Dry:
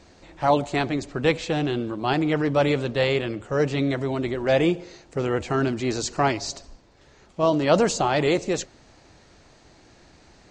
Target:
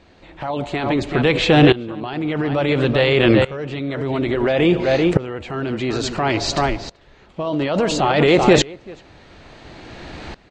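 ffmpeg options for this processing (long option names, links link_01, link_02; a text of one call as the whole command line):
ffmpeg -i in.wav -filter_complex "[0:a]highshelf=frequency=4500:width_type=q:width=1.5:gain=-8.5,asplit=2[link_01][link_02];[link_02]acompressor=threshold=-30dB:ratio=6,volume=-2dB[link_03];[link_01][link_03]amix=inputs=2:normalize=0,asplit=2[link_04][link_05];[link_05]adelay=384.8,volume=-12dB,highshelf=frequency=4000:gain=-8.66[link_06];[link_04][link_06]amix=inputs=2:normalize=0,alimiter=level_in=15.5dB:limit=-1dB:release=50:level=0:latency=1,aeval=exprs='val(0)*pow(10,-20*if(lt(mod(-0.58*n/s,1),2*abs(-0.58)/1000),1-mod(-0.58*n/s,1)/(2*abs(-0.58)/1000),(mod(-0.58*n/s,1)-2*abs(-0.58)/1000)/(1-2*abs(-0.58)/1000))/20)':channel_layout=same" out.wav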